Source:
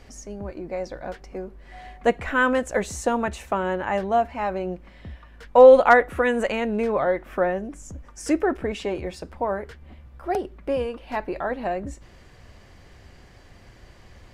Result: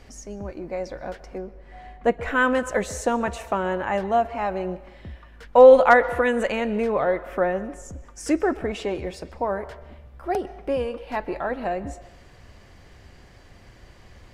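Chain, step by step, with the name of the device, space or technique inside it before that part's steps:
0:01.38–0:02.23: high-shelf EQ 2,200 Hz −9 dB
filtered reverb send (on a send: high-pass filter 380 Hz 24 dB per octave + low-pass filter 6,200 Hz + convolution reverb RT60 1.0 s, pre-delay 118 ms, DRR 15 dB)

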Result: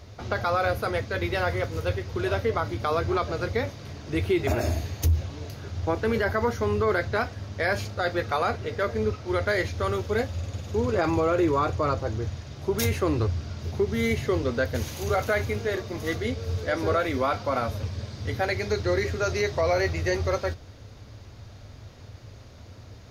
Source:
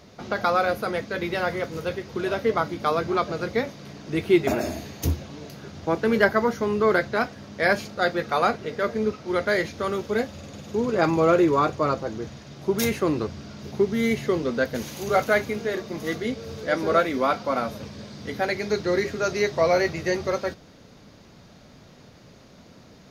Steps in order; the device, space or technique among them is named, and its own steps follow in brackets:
car stereo with a boomy subwoofer (low shelf with overshoot 130 Hz +8.5 dB, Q 3; brickwall limiter −15 dBFS, peak gain reduction 11.5 dB)

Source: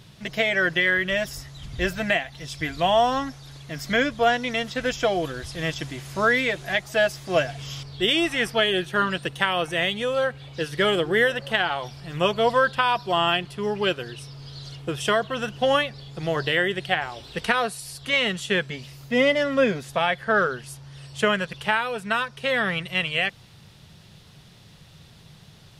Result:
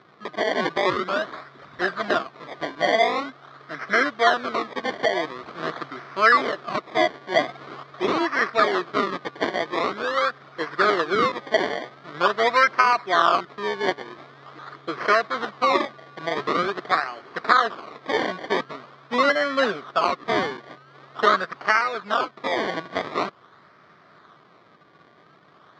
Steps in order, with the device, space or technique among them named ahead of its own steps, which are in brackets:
circuit-bent sampling toy (sample-and-hold swept by an LFO 23×, swing 100% 0.45 Hz; loudspeaker in its box 420–4,000 Hz, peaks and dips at 520 Hz −6 dB, 860 Hz −8 dB, 1,200 Hz +7 dB, 2,700 Hz −10 dB)
level +4.5 dB

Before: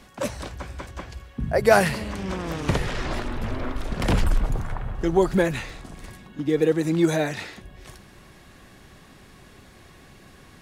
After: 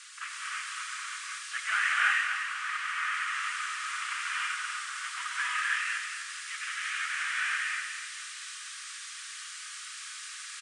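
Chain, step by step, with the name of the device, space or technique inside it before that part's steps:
army field radio (band-pass filter 390–3,200 Hz; variable-slope delta modulation 16 kbit/s; white noise bed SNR 15 dB)
Chebyshev band-pass filter 1,200–9,400 Hz, order 5
0:01.93–0:03.12: spectral tilt −2 dB per octave
repeating echo 245 ms, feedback 38%, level −8 dB
reverb whose tail is shaped and stops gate 360 ms rising, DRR −5 dB

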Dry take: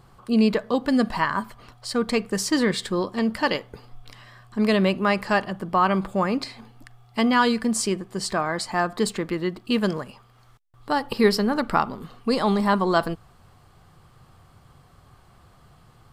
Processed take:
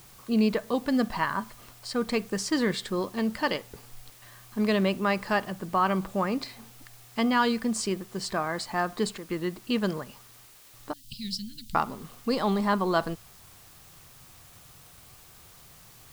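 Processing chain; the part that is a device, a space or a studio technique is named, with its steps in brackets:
worn cassette (low-pass filter 8,900 Hz; tape wow and flutter 24 cents; tape dropouts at 0:04.10/0:09.18/0:10.46/0:10.92, 117 ms −9 dB; white noise bed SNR 24 dB)
0:10.93–0:11.75: elliptic band-stop filter 160–3,400 Hz, stop band 80 dB
level −4.5 dB

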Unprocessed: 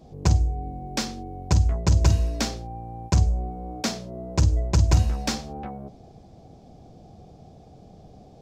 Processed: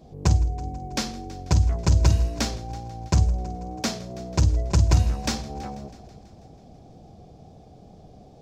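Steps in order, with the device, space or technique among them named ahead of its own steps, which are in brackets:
multi-head tape echo (echo machine with several playback heads 163 ms, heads first and second, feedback 56%, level −22.5 dB; tape wow and flutter 24 cents)

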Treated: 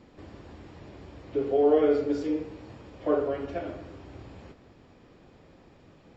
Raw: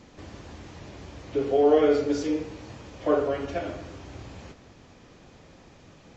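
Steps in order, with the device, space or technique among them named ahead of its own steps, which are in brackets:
parametric band 360 Hz +3 dB 1.1 octaves
behind a face mask (high-shelf EQ 3,300 Hz −7 dB)
notch filter 6,200 Hz, Q 6.9
level −4 dB

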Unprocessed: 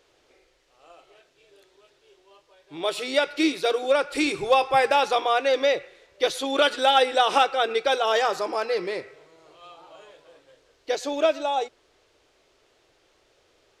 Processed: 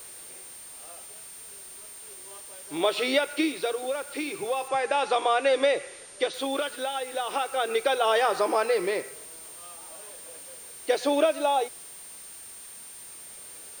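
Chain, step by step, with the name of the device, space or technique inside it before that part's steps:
medium wave at night (band-pass filter 180–4,100 Hz; downward compressor, threshold −25 dBFS, peak gain reduction 11 dB; amplitude tremolo 0.36 Hz, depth 66%; steady tone 9,000 Hz −49 dBFS; white noise bed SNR 20 dB)
0:04.68–0:06.34: low-pass filter 9,100 Hz 24 dB per octave
level +6 dB

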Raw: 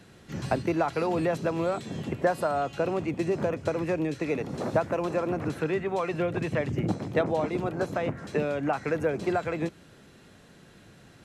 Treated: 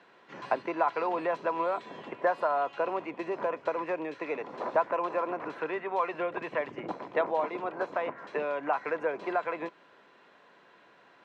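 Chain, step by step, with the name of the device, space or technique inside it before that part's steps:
tin-can telephone (band-pass filter 520–2,600 Hz; hollow resonant body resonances 1,000 Hz, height 12 dB, ringing for 45 ms)

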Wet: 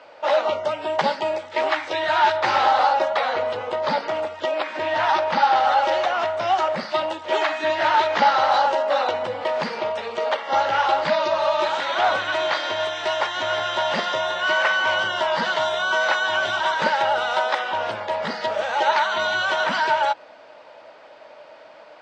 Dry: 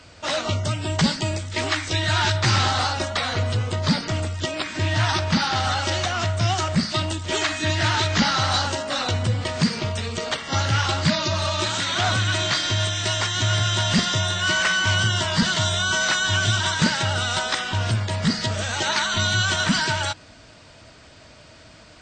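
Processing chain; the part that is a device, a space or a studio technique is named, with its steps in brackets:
tin-can telephone (band-pass filter 450–2,800 Hz; hollow resonant body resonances 570/830 Hz, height 12 dB, ringing for 20 ms)

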